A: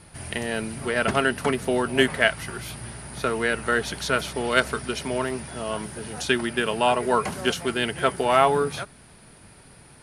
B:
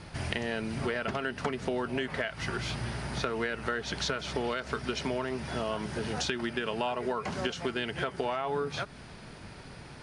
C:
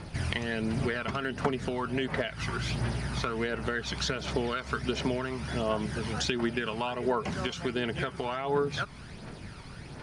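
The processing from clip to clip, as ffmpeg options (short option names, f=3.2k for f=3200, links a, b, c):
-af "lowpass=f=6.7k:w=0.5412,lowpass=f=6.7k:w=1.3066,alimiter=limit=-13dB:level=0:latency=1:release=160,acompressor=threshold=-33dB:ratio=6,volume=4dB"
-af "aphaser=in_gain=1:out_gain=1:delay=1:decay=0.44:speed=1.4:type=triangular"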